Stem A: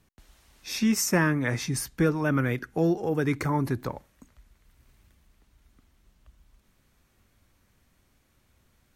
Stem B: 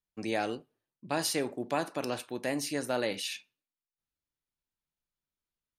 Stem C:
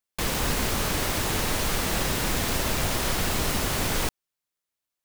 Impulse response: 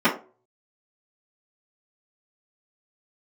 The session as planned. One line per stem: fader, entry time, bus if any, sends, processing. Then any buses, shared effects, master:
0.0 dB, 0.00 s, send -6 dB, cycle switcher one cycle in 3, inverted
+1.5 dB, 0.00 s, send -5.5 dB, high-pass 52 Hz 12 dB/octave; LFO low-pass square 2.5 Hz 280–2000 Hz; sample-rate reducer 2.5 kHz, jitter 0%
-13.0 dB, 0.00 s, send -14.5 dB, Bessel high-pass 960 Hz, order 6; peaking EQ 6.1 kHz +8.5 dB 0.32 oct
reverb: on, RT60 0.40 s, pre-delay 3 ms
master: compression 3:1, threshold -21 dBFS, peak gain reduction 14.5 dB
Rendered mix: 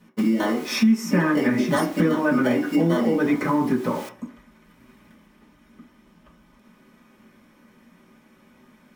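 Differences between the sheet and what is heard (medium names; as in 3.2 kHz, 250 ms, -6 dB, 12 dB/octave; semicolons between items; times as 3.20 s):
stem A: missing cycle switcher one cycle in 3, inverted; stem C: missing peaking EQ 6.1 kHz +8.5 dB 0.32 oct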